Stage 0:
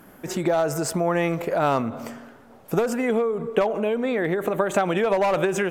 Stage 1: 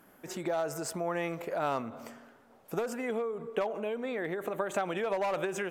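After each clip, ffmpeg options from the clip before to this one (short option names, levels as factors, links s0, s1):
-af "lowshelf=f=230:g=-7.5,volume=0.355"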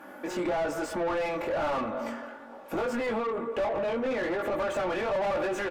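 -filter_complex "[0:a]flanger=delay=19:depth=3.6:speed=1.1,aecho=1:1:3.5:0.56,asplit=2[s0][s1];[s1]highpass=f=720:p=1,volume=31.6,asoftclip=type=tanh:threshold=0.119[s2];[s0][s2]amix=inputs=2:normalize=0,lowpass=f=1000:p=1,volume=0.501,volume=0.841"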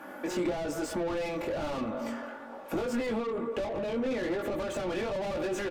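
-filter_complex "[0:a]acrossover=split=430|3000[s0][s1][s2];[s1]acompressor=threshold=0.01:ratio=6[s3];[s0][s3][s2]amix=inputs=3:normalize=0,volume=1.26"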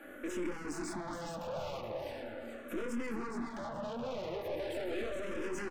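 -filter_complex "[0:a]aecho=1:1:425|850|1275|1700:0.501|0.16|0.0513|0.0164,aeval=exprs='(tanh(39.8*val(0)+0.6)-tanh(0.6))/39.8':c=same,asplit=2[s0][s1];[s1]afreqshift=-0.4[s2];[s0][s2]amix=inputs=2:normalize=1"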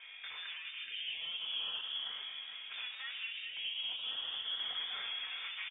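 -af "highpass=f=740:t=q:w=1.6,aecho=1:1:1080:0.188,lowpass=f=3300:t=q:w=0.5098,lowpass=f=3300:t=q:w=0.6013,lowpass=f=3300:t=q:w=0.9,lowpass=f=3300:t=q:w=2.563,afreqshift=-3900"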